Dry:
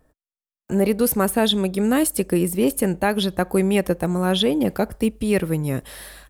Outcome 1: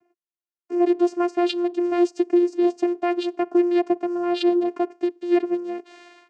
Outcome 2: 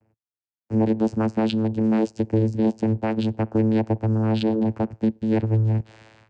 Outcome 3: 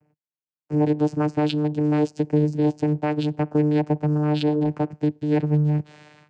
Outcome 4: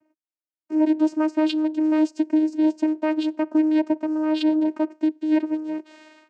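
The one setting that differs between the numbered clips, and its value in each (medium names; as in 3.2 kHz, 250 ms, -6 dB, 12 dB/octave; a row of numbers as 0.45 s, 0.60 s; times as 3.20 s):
vocoder, frequency: 350 Hz, 110 Hz, 150 Hz, 310 Hz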